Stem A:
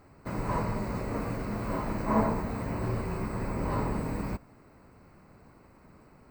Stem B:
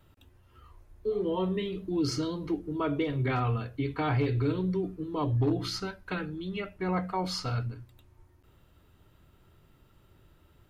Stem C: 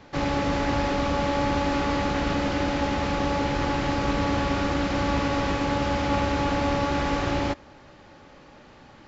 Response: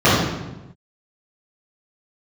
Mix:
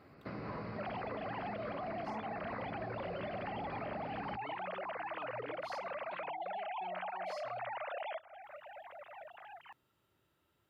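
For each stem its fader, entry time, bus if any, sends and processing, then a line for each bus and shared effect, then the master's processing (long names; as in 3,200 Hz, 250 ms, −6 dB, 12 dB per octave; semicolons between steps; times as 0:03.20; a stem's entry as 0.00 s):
0.0 dB, 0.00 s, bus A, no send, elliptic low-pass filter 4,900 Hz, stop band 40 dB; notch filter 930 Hz, Q 5.7; automatic gain control gain up to 6.5 dB
−10.0 dB, 0.00 s, bus A, no send, low-shelf EQ 410 Hz −6 dB
−2.5 dB, 0.65 s, no bus, no send, three sine waves on the formant tracks; downward compressor, threshold −26 dBFS, peak gain reduction 7 dB
bus A: 0.0 dB, low-shelf EQ 85 Hz −11 dB; downward compressor 4 to 1, threshold −31 dBFS, peak gain reduction 12.5 dB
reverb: not used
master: high-pass filter 61 Hz; downward compressor 2.5 to 1, threshold −44 dBFS, peak gain reduction 12.5 dB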